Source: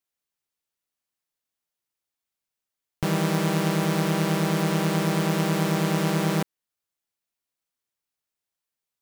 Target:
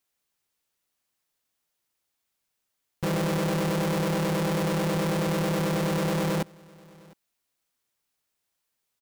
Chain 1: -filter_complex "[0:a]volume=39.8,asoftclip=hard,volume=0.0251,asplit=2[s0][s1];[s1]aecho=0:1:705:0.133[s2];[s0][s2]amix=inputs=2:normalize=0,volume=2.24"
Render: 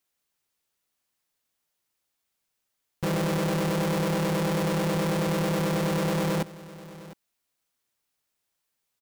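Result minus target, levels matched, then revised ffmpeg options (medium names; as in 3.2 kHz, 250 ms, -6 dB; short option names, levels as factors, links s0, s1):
echo-to-direct +7.5 dB
-filter_complex "[0:a]volume=39.8,asoftclip=hard,volume=0.0251,asplit=2[s0][s1];[s1]aecho=0:1:705:0.0562[s2];[s0][s2]amix=inputs=2:normalize=0,volume=2.24"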